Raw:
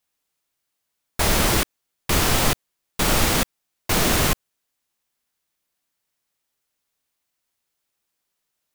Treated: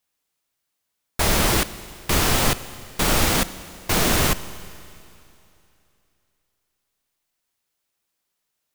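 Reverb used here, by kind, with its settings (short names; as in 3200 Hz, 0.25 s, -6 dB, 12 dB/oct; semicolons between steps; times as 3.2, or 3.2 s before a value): Schroeder reverb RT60 2.8 s, combs from 33 ms, DRR 15 dB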